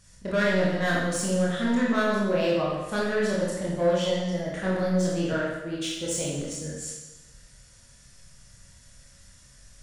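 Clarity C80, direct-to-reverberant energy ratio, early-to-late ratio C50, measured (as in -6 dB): 3.0 dB, -5.5 dB, 0.0 dB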